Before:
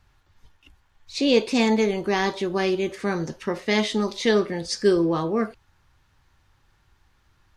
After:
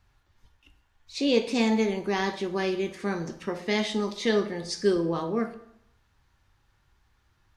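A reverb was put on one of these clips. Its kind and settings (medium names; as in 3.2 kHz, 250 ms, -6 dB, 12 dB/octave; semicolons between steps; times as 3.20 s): plate-style reverb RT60 0.72 s, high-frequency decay 0.8×, pre-delay 0 ms, DRR 8 dB; trim -5 dB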